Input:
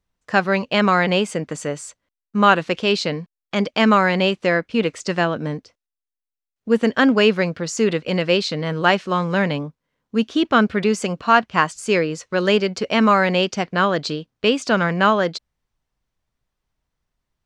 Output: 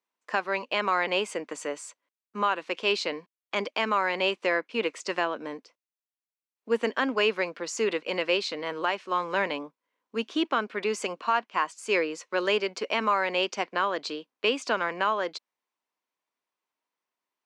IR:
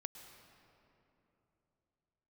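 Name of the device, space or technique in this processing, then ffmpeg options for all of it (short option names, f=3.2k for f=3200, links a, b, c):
laptop speaker: -af "highpass=f=280:w=0.5412,highpass=f=280:w=1.3066,equalizer=f=1k:t=o:w=0.4:g=7,equalizer=f=2.4k:t=o:w=0.6:g=4.5,alimiter=limit=-6.5dB:level=0:latency=1:release=401,volume=-7dB"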